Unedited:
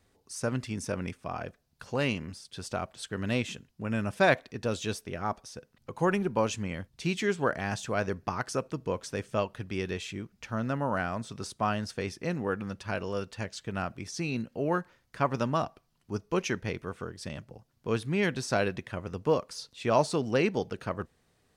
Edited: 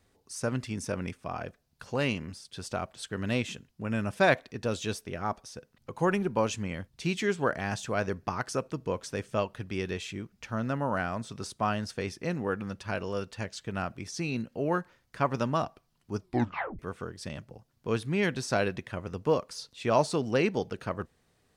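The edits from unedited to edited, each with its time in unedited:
16.2 tape stop 0.59 s

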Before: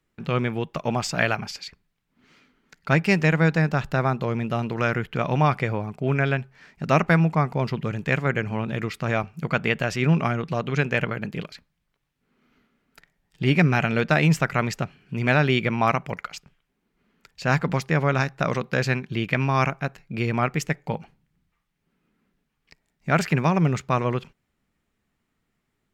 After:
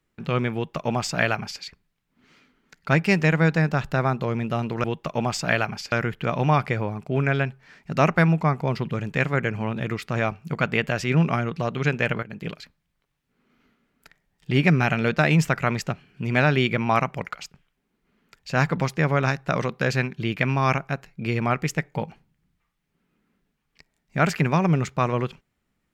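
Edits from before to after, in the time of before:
0.54–1.62 copy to 4.84
11.15–11.41 fade in, from -15.5 dB

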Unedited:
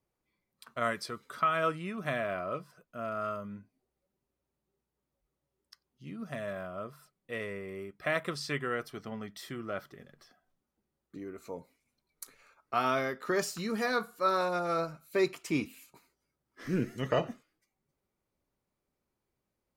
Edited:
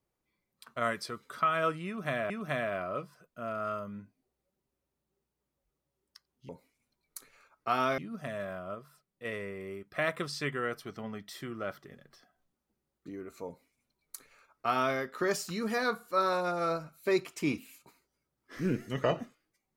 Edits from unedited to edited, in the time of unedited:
1.87–2.3 loop, 2 plays
6.83–7.33 gain -3.5 dB
11.55–13.04 copy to 6.06

